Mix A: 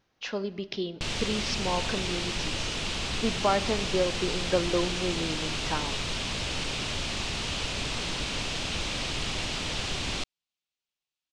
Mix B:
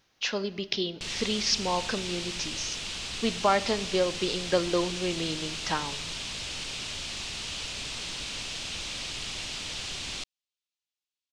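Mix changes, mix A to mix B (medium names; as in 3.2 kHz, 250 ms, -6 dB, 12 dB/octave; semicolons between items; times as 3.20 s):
background -10.0 dB; master: add treble shelf 2.1 kHz +10.5 dB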